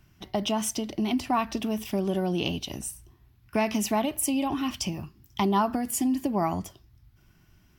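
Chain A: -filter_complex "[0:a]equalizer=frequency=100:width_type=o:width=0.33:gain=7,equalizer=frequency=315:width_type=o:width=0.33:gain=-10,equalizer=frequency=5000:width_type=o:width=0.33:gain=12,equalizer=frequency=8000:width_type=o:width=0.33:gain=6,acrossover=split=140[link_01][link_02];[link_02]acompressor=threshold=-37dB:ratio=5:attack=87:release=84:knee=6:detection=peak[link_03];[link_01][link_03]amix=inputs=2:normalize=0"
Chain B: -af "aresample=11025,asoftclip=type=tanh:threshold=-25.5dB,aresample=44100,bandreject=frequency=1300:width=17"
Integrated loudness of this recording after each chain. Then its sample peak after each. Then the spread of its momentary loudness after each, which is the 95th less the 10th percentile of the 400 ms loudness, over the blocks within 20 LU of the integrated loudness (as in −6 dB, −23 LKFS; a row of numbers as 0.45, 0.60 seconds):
−33.0, −32.5 LKFS; −9.5, −22.0 dBFS; 6, 7 LU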